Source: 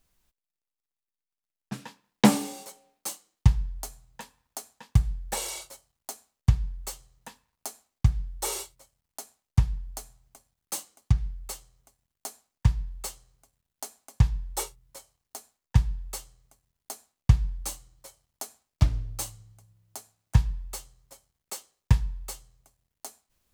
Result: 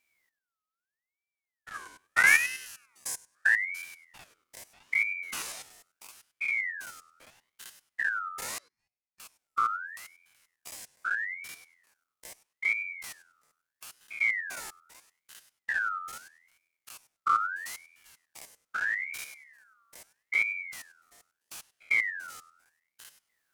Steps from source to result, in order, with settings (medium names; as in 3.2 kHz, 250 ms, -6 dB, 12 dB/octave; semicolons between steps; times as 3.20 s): spectrogram pixelated in time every 100 ms; 1.74–3.83 s: graphic EQ 250/4000/8000 Hz +10/-6/+10 dB; wow and flutter 39 cents; 8.58–9.20 s: vowel filter i; ring modulator with a swept carrier 1.8 kHz, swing 30%, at 0.78 Hz